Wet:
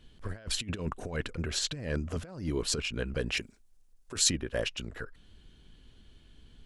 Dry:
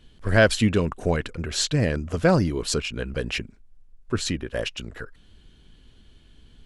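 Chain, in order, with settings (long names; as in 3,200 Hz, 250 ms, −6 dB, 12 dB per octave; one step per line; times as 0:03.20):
compressor whose output falls as the input rises −25 dBFS, ratio −0.5
0:03.37–0:04.30: bass and treble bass −8 dB, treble +12 dB
level −7 dB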